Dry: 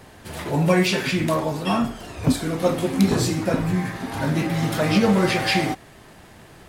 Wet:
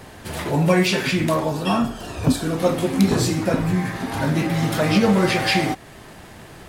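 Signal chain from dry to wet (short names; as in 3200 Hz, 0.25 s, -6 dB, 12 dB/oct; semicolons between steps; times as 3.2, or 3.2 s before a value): 1.49–2.58 notch 2100 Hz, Q 6.4; in parallel at -2.5 dB: compressor, threshold -31 dBFS, peak gain reduction 17 dB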